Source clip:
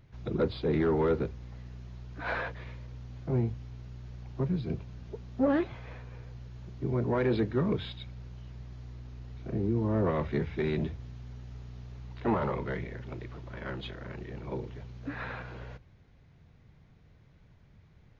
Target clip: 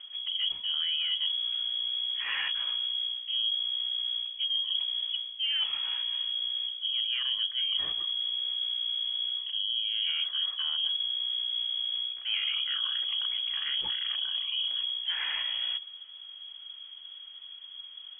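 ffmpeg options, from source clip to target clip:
-af "highpass=40,lowshelf=f=360:g=8,bandreject=f=720:w=12,areverse,acompressor=threshold=-34dB:ratio=10,areverse,lowpass=f=2.9k:t=q:w=0.5098,lowpass=f=2.9k:t=q:w=0.6013,lowpass=f=2.9k:t=q:w=0.9,lowpass=f=2.9k:t=q:w=2.563,afreqshift=-3400,acontrast=88,volume=-1dB"

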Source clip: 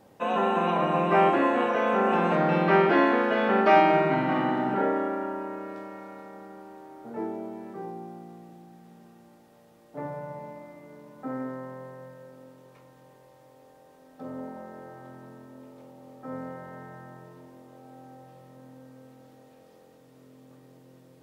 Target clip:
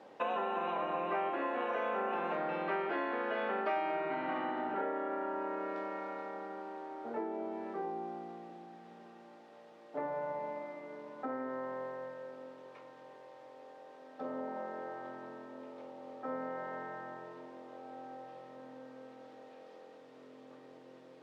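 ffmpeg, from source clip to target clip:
-af "acompressor=threshold=-35dB:ratio=6,highpass=350,lowpass=3.9k,volume=3dB"

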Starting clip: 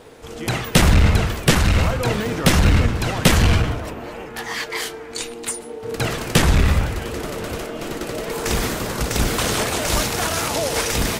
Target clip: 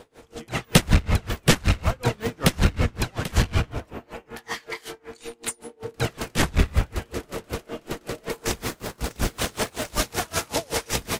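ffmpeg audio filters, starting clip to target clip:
-filter_complex "[0:a]asettb=1/sr,asplit=3[a][b][c];[a]atrim=end=8.644[d];[b]atrim=start=8.64:end=9.99,asetpts=PTS-STARTPTS,afade=t=in:d=0.004:c=qsin,afade=t=out:st=1.346:d=0.004:c=qsin,aeval=exprs='sgn(val(0))*max(abs(val(0))-0.0188,0)':c=same[e];[c]atrim=start=9.986[f];[d][e]acrossfade=d=0.004:c1=hsin:c2=qsin[g];[g][f]acrossfade=d=0.004:c1=qsin:c2=hsin,aeval=exprs='val(0)*pow(10,-29*(0.5-0.5*cos(2*PI*5.3*n/s))/20)':c=same"

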